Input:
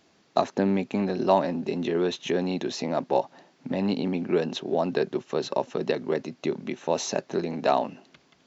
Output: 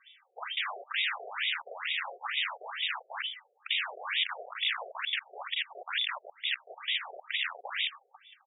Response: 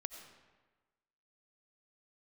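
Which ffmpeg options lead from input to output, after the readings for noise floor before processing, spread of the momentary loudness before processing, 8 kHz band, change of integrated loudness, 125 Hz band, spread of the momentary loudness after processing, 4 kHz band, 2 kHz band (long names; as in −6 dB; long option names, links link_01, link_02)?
−63 dBFS, 6 LU, can't be measured, −5.5 dB, below −40 dB, 5 LU, +7.5 dB, +7.0 dB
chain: -filter_complex "[0:a]aecho=1:1:2.7:0.95,volume=14.5dB,asoftclip=hard,volume=-14.5dB,asplit=4[link_01][link_02][link_03][link_04];[link_02]adelay=115,afreqshift=-43,volume=-23.5dB[link_05];[link_03]adelay=230,afreqshift=-86,volume=-29.5dB[link_06];[link_04]adelay=345,afreqshift=-129,volume=-35.5dB[link_07];[link_01][link_05][link_06][link_07]amix=inputs=4:normalize=0,aeval=exprs='(mod(23.7*val(0)+1,2)-1)/23.7':channel_layout=same,asplit=2[link_08][link_09];[1:a]atrim=start_sample=2205,afade=type=out:start_time=0.21:duration=0.01,atrim=end_sample=9702[link_10];[link_09][link_10]afir=irnorm=-1:irlink=0,volume=-9.5dB[link_11];[link_08][link_11]amix=inputs=2:normalize=0,lowpass=frequency=3200:width_type=q:width=0.5098,lowpass=frequency=3200:width_type=q:width=0.6013,lowpass=frequency=3200:width_type=q:width=0.9,lowpass=frequency=3200:width_type=q:width=2.563,afreqshift=-3800,afftfilt=real='re*between(b*sr/1024,520*pow(2800/520,0.5+0.5*sin(2*PI*2.2*pts/sr))/1.41,520*pow(2800/520,0.5+0.5*sin(2*PI*2.2*pts/sr))*1.41)':imag='im*between(b*sr/1024,520*pow(2800/520,0.5+0.5*sin(2*PI*2.2*pts/sr))/1.41,520*pow(2800/520,0.5+0.5*sin(2*PI*2.2*pts/sr))*1.41)':win_size=1024:overlap=0.75,volume=4.5dB"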